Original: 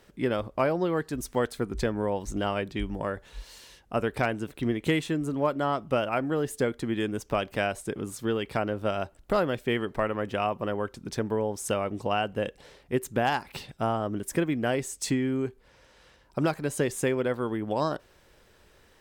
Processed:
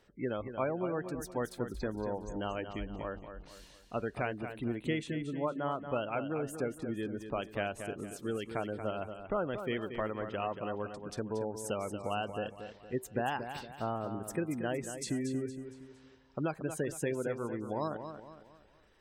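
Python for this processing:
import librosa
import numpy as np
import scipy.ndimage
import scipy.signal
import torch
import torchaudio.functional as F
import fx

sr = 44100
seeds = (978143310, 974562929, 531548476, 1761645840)

y = fx.delta_hold(x, sr, step_db=-41.5, at=(1.71, 3.48))
y = fx.spec_gate(y, sr, threshold_db=-25, keep='strong')
y = fx.high_shelf(y, sr, hz=3700.0, db=-10.0, at=(6.61, 7.4))
y = fx.echo_feedback(y, sr, ms=231, feedback_pct=40, wet_db=-9)
y = F.gain(torch.from_numpy(y), -8.0).numpy()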